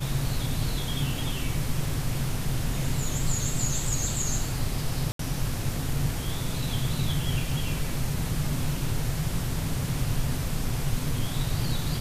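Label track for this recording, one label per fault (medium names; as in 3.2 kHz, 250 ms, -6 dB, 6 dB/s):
5.120000	5.190000	dropout 73 ms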